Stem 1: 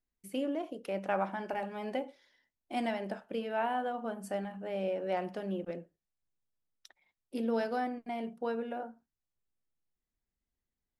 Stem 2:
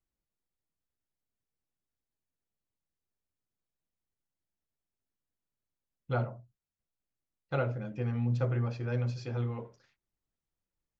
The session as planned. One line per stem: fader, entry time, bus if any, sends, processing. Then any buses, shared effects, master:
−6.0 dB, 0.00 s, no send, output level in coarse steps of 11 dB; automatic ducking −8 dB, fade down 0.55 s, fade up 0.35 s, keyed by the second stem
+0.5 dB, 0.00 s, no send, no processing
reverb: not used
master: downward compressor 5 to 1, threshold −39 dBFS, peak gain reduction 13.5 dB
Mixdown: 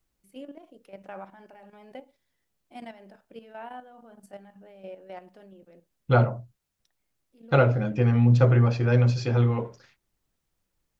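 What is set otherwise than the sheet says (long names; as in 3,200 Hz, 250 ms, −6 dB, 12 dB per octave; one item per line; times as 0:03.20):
stem 2 +0.5 dB → +11.5 dB
master: missing downward compressor 5 to 1, threshold −39 dBFS, peak gain reduction 13.5 dB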